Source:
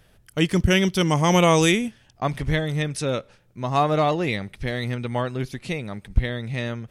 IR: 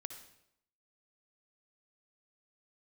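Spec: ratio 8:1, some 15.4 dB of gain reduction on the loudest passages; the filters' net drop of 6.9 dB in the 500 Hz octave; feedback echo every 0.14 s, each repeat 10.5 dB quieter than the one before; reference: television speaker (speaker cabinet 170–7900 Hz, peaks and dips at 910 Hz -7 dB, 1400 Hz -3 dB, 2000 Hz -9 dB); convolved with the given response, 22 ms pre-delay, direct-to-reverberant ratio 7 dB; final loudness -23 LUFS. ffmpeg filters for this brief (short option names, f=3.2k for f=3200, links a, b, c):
-filter_complex "[0:a]equalizer=f=500:t=o:g=-8.5,acompressor=threshold=-29dB:ratio=8,aecho=1:1:140|280|420:0.299|0.0896|0.0269,asplit=2[a][b];[1:a]atrim=start_sample=2205,adelay=22[c];[b][c]afir=irnorm=-1:irlink=0,volume=-3.5dB[d];[a][d]amix=inputs=2:normalize=0,highpass=f=170:w=0.5412,highpass=f=170:w=1.3066,equalizer=f=910:t=q:w=4:g=-7,equalizer=f=1.4k:t=q:w=4:g=-3,equalizer=f=2k:t=q:w=4:g=-9,lowpass=f=7.9k:w=0.5412,lowpass=f=7.9k:w=1.3066,volume=13dB"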